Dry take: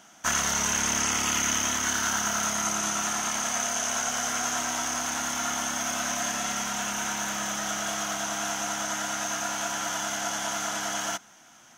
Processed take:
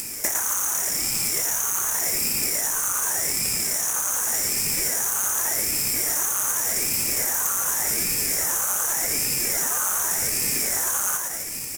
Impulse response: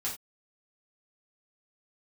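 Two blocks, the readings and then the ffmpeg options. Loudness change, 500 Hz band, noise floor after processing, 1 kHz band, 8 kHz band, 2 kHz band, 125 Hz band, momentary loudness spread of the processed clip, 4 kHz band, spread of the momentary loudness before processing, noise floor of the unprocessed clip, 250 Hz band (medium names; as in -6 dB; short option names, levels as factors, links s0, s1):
+6.0 dB, -0.5 dB, -31 dBFS, -4.0 dB, +5.5 dB, -1.5 dB, +2.0 dB, 1 LU, +1.5 dB, 5 LU, -54 dBFS, -3.5 dB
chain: -filter_complex "[0:a]highpass=f=240:w=0.5412,highpass=f=240:w=1.3066,bandreject=f=750:w=20,aexciter=amount=12.6:drive=9.9:freq=6500,equalizer=f=1200:w=1.9:g=14,acompressor=threshold=0.158:ratio=16,asplit=2[s0][s1];[s1]aecho=0:1:110|264|479.6|781.4|1204:0.631|0.398|0.251|0.158|0.1[s2];[s0][s2]amix=inputs=2:normalize=0,acrusher=bits=2:mode=log:mix=0:aa=0.000001,equalizer=f=4500:w=0.71:g=-8.5,acompressor=mode=upward:threshold=0.0891:ratio=2.5,aeval=exprs='val(0)*sin(2*PI*620*n/s+620*0.85/0.86*sin(2*PI*0.86*n/s))':c=same"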